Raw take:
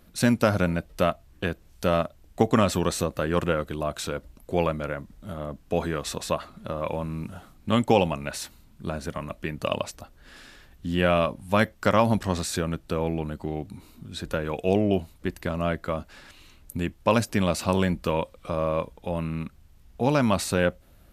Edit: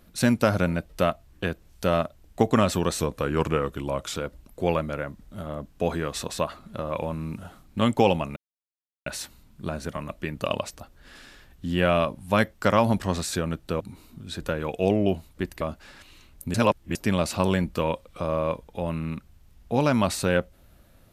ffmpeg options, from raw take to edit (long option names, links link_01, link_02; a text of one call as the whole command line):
ffmpeg -i in.wav -filter_complex "[0:a]asplit=8[link_01][link_02][link_03][link_04][link_05][link_06][link_07][link_08];[link_01]atrim=end=3.004[link_09];[link_02]atrim=start=3:end=4.06,asetpts=PTS-STARTPTS,asetrate=40572,aresample=44100[link_10];[link_03]atrim=start=4.056:end=8.27,asetpts=PTS-STARTPTS,afade=type=out:start_time=4.21:duration=0.004:curve=hsin,apad=pad_dur=0.7[link_11];[link_04]atrim=start=8.27:end=13.012,asetpts=PTS-STARTPTS,afade=type=in:duration=0.004:curve=hsin[link_12];[link_05]atrim=start=13.648:end=15.462[link_13];[link_06]atrim=start=15.898:end=16.832[link_14];[link_07]atrim=start=16.828:end=17.242,asetpts=PTS-STARTPTS,areverse[link_15];[link_08]atrim=start=17.238[link_16];[link_09][link_10]acrossfade=duration=0.004:curve1=hsin:curve2=hsin[link_17];[link_11][link_12]concat=n=2:v=0:a=1[link_18];[link_17][link_18]acrossfade=duration=0.004:curve1=hsin:curve2=hsin[link_19];[link_19][link_13]acrossfade=duration=0.004:curve1=hsin:curve2=hsin[link_20];[link_20][link_14]acrossfade=duration=0.004:curve1=hsin:curve2=hsin[link_21];[link_21][link_15]acrossfade=duration=0.004:curve1=hsin:curve2=hsin[link_22];[link_22][link_16]acrossfade=duration=0.004:curve1=hsin:curve2=hsin" out.wav